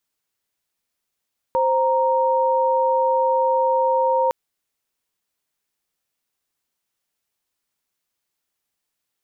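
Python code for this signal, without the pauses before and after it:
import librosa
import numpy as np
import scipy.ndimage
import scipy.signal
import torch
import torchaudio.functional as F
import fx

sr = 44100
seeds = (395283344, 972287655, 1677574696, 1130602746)

y = fx.chord(sr, length_s=2.76, notes=(72, 82), wave='sine', level_db=-18.5)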